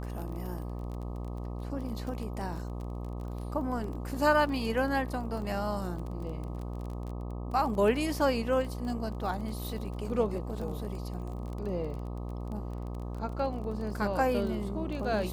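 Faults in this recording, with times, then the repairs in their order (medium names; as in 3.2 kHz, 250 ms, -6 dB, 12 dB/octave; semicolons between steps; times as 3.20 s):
buzz 60 Hz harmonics 21 -37 dBFS
crackle 23 per s -37 dBFS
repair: de-click; de-hum 60 Hz, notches 21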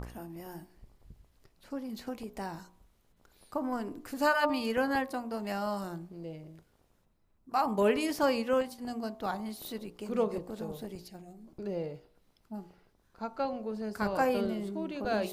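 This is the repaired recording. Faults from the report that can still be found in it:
nothing left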